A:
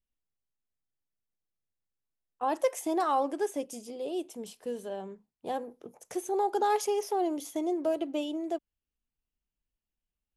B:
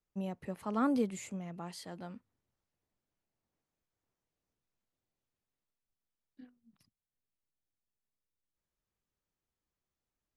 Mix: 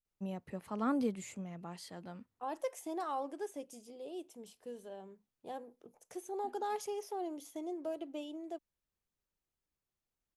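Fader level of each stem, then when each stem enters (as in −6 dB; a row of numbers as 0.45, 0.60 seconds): −10.5, −2.5 decibels; 0.00, 0.05 seconds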